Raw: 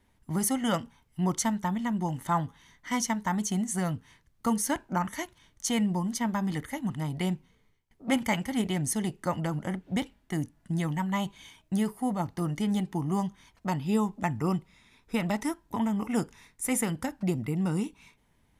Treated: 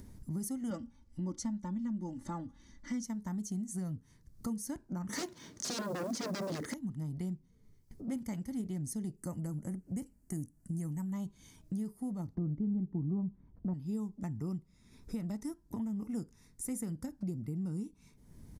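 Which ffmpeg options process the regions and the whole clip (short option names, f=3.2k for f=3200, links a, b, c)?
-filter_complex "[0:a]asettb=1/sr,asplit=3[a][b][c];[a]atrim=end=0.704[d];[b]atrim=start=0.7:end=3.04,asetpts=PTS-STARTPTS,afade=t=in:d=0.004:c=qsin,afade=t=out:st=2.336:d=0.004:c=qsin,lowpass=6.1k,aecho=1:1:3.5:0.97,atrim=end_sample=103194[e];[c]atrim=start=3.036[f];[d][e]acrossfade=d=0.004:c1=hsin:c2=qsin[g];[g][f]acrossfade=d=0.004:c1=qsin:c2=hsin,asettb=1/sr,asplit=3[h][i][j];[h]atrim=end=5.094[k];[i]atrim=start=5.09:end=6.74,asetpts=PTS-STARTPTS,afade=t=in:d=0.004:c=qsin,afade=t=out:st=1.646:d=0.004:c=qsin,aeval=exprs='0.168*sin(PI/2*7.94*val(0)/0.168)':c=same,highpass=280,lowpass=5.8k,acrusher=bits=6:mode=log:mix=0:aa=0.000001[l];[j]atrim=start=6.736[m];[k][l]acrossfade=d=0.004:c1=hsin:c2=qsin[n];[n][m]acrossfade=d=0.004:c1=qsin:c2=hsin,asettb=1/sr,asplit=3[o][p][q];[o]atrim=end=9.174[r];[p]atrim=start=9.17:end=11.13,asetpts=PTS-STARTPTS,afade=t=in:d=0.004:c=qsin,afade=t=out:st=1.956:d=0.004:c=qsin,asuperstop=centerf=3600:order=4:qfactor=3.8,highshelf=f=6.3k:t=q:w=1.5:g=8[s];[q]atrim=start=11.126[t];[r][s]acrossfade=d=0.004:c1=hsin:c2=qsin[u];[u][t]acrossfade=d=0.004:c1=qsin:c2=hsin,asettb=1/sr,asplit=3[v][w][x];[v]atrim=end=12.354[y];[w]atrim=start=12.35:end=13.74,asetpts=PTS-STARTPTS,afade=t=in:d=0.004:c=qsin,afade=t=out:st=1.386:d=0.004:c=qsin,lowpass=1.7k,tiltshelf=f=1.1k:g=8.5[z];[x]atrim=start=13.736[aa];[y][z]acrossfade=d=0.004:c1=hsin:c2=qsin[ab];[ab][aa]acrossfade=d=0.004:c1=qsin:c2=hsin,acompressor=mode=upward:threshold=-42dB:ratio=2.5,firequalizer=gain_entry='entry(200,0);entry(790,-15);entry(1300,-14);entry(3000,-20);entry(4800,-6)':delay=0.05:min_phase=1,acompressor=threshold=-45dB:ratio=2.5,volume=4dB"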